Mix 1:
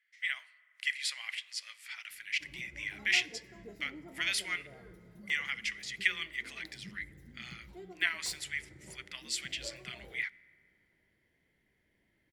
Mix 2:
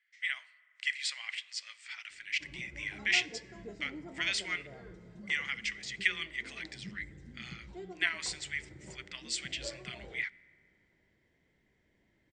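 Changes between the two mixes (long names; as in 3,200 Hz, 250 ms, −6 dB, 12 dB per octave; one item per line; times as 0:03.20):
background +3.5 dB
master: add linear-phase brick-wall low-pass 8,900 Hz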